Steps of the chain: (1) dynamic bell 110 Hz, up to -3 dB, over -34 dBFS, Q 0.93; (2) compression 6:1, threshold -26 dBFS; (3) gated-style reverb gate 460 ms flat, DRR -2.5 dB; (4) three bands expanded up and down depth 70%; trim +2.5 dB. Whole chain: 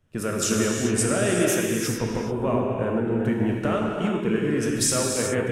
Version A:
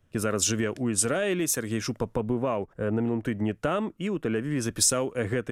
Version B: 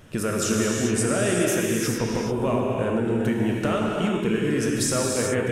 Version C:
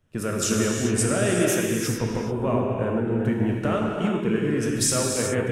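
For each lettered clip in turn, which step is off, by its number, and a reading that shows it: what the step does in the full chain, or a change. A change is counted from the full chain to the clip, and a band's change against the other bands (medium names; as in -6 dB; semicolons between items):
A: 3, loudness change -3.5 LU; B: 4, 8 kHz band -2.0 dB; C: 1, 125 Hz band +2.0 dB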